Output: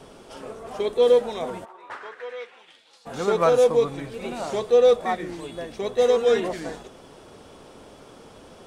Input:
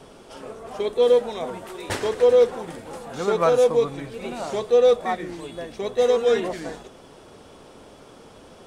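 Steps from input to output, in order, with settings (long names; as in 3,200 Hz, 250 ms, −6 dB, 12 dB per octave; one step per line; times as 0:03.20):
0:01.64–0:03.05: resonant band-pass 840 Hz → 4,700 Hz, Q 2.9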